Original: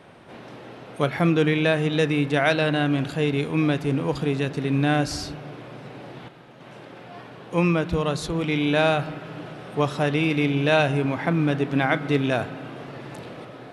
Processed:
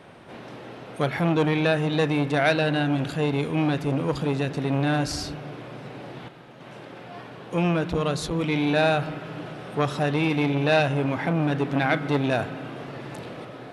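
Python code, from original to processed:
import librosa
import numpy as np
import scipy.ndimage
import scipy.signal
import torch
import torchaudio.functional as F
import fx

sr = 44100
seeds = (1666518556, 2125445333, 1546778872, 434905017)

y = fx.transformer_sat(x, sr, knee_hz=890.0)
y = y * 10.0 ** (1.0 / 20.0)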